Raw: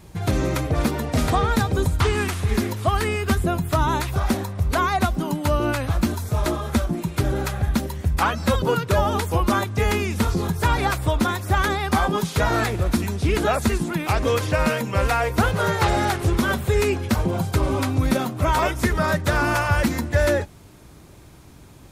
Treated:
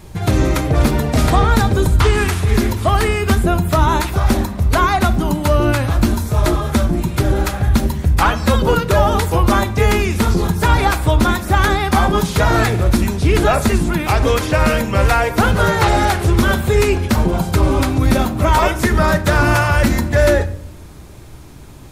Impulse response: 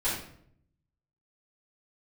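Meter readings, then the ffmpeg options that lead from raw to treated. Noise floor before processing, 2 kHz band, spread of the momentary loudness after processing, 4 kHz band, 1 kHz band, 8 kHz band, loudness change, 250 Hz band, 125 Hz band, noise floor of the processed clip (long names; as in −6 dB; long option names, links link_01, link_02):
−46 dBFS, +6.0 dB, 3 LU, +6.0 dB, +6.0 dB, +6.0 dB, +6.5 dB, +6.0 dB, +7.0 dB, −36 dBFS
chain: -filter_complex "[0:a]acontrast=73,asplit=2[link_01][link_02];[1:a]atrim=start_sample=2205,lowshelf=frequency=140:gain=9.5[link_03];[link_02][link_03]afir=irnorm=-1:irlink=0,volume=-19dB[link_04];[link_01][link_04]amix=inputs=2:normalize=0,volume=-1dB"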